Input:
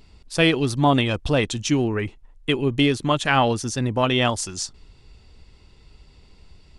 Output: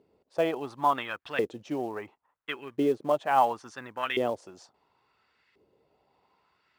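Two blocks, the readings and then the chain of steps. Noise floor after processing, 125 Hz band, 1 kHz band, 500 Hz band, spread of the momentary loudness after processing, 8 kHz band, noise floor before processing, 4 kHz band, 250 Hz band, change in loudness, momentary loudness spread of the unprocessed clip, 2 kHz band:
-75 dBFS, -23.0 dB, -3.0 dB, -5.5 dB, 14 LU, under -20 dB, -53 dBFS, -16.0 dB, -12.5 dB, -8.0 dB, 10 LU, -10.5 dB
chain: LFO band-pass saw up 0.72 Hz 420–1900 Hz; high-pass 89 Hz 12 dB/octave; in parallel at -7 dB: short-mantissa float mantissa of 2-bit; on the sum: trim -3 dB

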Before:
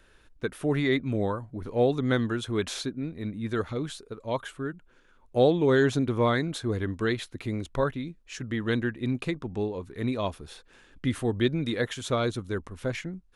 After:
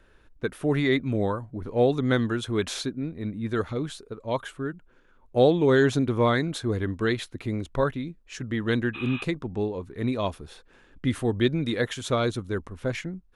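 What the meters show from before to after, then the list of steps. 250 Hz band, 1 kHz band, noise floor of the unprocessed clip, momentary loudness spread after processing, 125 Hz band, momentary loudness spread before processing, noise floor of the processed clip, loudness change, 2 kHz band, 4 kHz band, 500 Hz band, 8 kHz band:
+2.0 dB, +2.0 dB, -59 dBFS, 12 LU, +2.0 dB, 12 LU, -58 dBFS, +2.0 dB, +2.0 dB, +2.0 dB, +2.0 dB, +1.5 dB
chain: spectral replace 8.97–9.19 s, 760–4000 Hz after; tape noise reduction on one side only decoder only; trim +2 dB

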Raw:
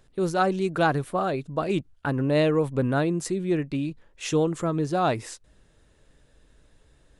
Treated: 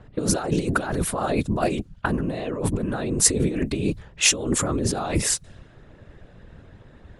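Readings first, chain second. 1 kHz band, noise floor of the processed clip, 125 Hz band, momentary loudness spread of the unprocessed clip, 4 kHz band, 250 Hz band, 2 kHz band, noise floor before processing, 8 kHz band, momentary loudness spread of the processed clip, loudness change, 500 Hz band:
-2.5 dB, -51 dBFS, +1.5 dB, 8 LU, +9.5 dB, +1.0 dB, +2.0 dB, -61 dBFS, +18.0 dB, 8 LU, +2.0 dB, -2.5 dB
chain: compressor with a negative ratio -31 dBFS, ratio -1; treble shelf 6.8 kHz +10.5 dB; whisper effect; level-controlled noise filter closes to 1.7 kHz, open at -26.5 dBFS; trim +6.5 dB

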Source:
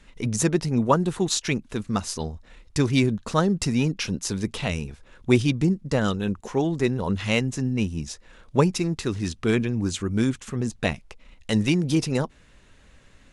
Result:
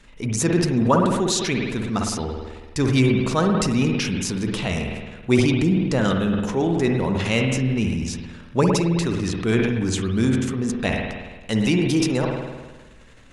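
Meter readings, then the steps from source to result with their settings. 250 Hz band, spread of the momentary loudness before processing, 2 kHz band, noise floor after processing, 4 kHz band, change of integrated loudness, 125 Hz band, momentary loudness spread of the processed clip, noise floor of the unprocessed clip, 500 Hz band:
+3.5 dB, 10 LU, +3.5 dB, -45 dBFS, +3.0 dB, +3.0 dB, +3.0 dB, 10 LU, -54 dBFS, +3.5 dB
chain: hum notches 50/100/150 Hz; spring tank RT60 1.4 s, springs 53 ms, chirp 70 ms, DRR 4 dB; transient shaper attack -2 dB, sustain +7 dB; trim +1.5 dB

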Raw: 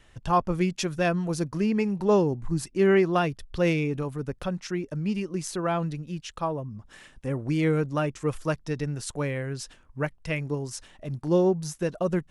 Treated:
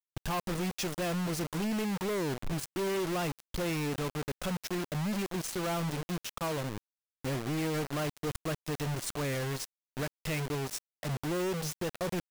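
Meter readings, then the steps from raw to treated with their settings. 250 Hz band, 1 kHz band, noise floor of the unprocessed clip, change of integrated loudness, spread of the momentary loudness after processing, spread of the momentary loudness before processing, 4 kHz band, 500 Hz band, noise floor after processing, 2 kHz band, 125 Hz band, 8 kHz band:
-7.5 dB, -7.0 dB, -57 dBFS, -7.0 dB, 5 LU, 12 LU, +0.5 dB, -9.0 dB, under -85 dBFS, -4.5 dB, -6.0 dB, 0.0 dB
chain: compression 1.5:1, threshold -36 dBFS, peak gain reduction 7 dB; overload inside the chain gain 28 dB; bit crusher 6-bit

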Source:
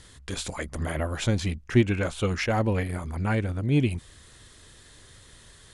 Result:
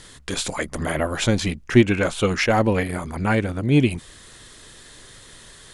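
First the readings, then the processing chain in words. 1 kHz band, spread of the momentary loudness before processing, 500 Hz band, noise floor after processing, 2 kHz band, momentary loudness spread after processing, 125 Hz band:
+7.5 dB, 10 LU, +7.0 dB, -46 dBFS, +7.5 dB, 9 LU, +2.5 dB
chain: peaking EQ 70 Hz -10 dB 1.4 oct; trim +7.5 dB

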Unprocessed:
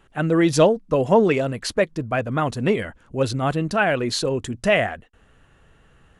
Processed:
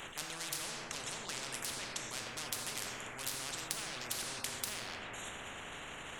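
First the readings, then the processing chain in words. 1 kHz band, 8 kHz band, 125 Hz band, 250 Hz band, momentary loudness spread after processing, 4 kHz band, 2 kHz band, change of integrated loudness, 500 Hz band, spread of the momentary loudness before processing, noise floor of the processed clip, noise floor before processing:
-20.0 dB, -3.5 dB, -27.5 dB, -29.5 dB, 6 LU, -8.5 dB, -16.0 dB, -19.0 dB, -30.0 dB, 8 LU, -47 dBFS, -56 dBFS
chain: local Wiener filter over 9 samples; pre-emphasis filter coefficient 0.97; low-pass that closes with the level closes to 2.6 kHz, closed at -31 dBFS; reverb removal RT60 0.62 s; bass shelf 330 Hz +7.5 dB; peak limiter -31.5 dBFS, peak gain reduction 12 dB; transient shaper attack -9 dB, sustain +12 dB; compression 2:1, threshold -53 dBFS, peak gain reduction 9.5 dB; plate-style reverb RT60 2.1 s, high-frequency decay 0.25×, DRR 0.5 dB; spectrum-flattening compressor 10:1; trim +15.5 dB

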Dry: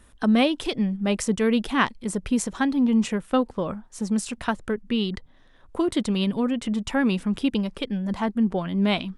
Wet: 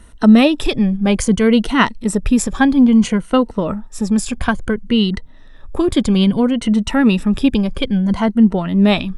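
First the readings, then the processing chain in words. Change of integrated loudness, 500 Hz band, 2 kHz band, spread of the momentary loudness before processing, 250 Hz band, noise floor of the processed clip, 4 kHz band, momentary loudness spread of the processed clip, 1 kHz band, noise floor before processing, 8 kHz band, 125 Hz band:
+9.5 dB, +8.0 dB, +7.5 dB, 8 LU, +10.0 dB, -38 dBFS, +7.5 dB, 9 LU, +7.0 dB, -53 dBFS, +7.5 dB, +10.5 dB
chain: drifting ripple filter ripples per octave 1.9, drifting -0.6 Hz, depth 9 dB; bass shelf 120 Hz +11.5 dB; trim +6.5 dB

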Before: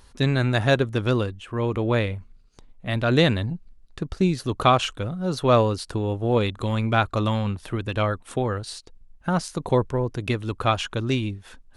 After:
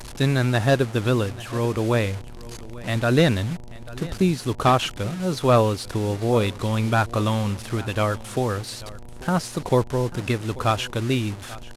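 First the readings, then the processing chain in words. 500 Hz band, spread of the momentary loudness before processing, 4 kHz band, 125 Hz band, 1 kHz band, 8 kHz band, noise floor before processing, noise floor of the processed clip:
+1.0 dB, 12 LU, 0.0 dB, +1.5 dB, +0.5 dB, +5.0 dB, -53 dBFS, -37 dBFS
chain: one-bit delta coder 64 kbps, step -32.5 dBFS; delay 839 ms -19 dB; mains buzz 120 Hz, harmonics 8, -48 dBFS -5 dB/octave; trim +1 dB

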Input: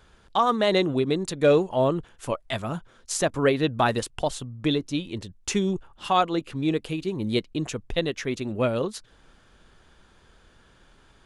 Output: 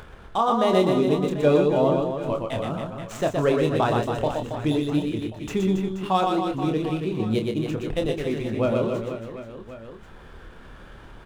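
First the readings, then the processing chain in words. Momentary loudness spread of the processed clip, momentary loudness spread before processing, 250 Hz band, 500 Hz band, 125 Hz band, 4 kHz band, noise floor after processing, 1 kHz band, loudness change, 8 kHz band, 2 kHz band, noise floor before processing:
12 LU, 11 LU, +3.0 dB, +2.5 dB, +3.5 dB, -3.5 dB, -45 dBFS, +1.5 dB, +2.0 dB, -9.5 dB, -2.5 dB, -57 dBFS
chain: median filter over 9 samples; treble shelf 5.8 kHz -8 dB; on a send: reverse bouncing-ball echo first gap 120 ms, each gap 1.3×, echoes 5; on the sum: upward compressor, threshold -34 dBFS; doubling 27 ms -6.5 dB; dynamic bell 1.8 kHz, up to -6 dB, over -41 dBFS, Q 1.7

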